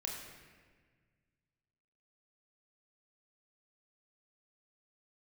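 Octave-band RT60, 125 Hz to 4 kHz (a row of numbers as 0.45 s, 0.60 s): 2.6 s, 2.1 s, 1.7 s, 1.4 s, 1.6 s, 1.2 s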